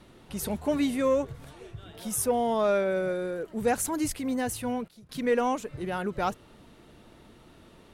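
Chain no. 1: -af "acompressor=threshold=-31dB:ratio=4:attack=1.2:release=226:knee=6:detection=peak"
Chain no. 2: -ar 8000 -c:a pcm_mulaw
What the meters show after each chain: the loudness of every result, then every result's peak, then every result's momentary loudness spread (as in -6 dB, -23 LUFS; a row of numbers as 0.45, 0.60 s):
-36.5, -29.0 LUFS; -24.0, -15.5 dBFS; 20, 15 LU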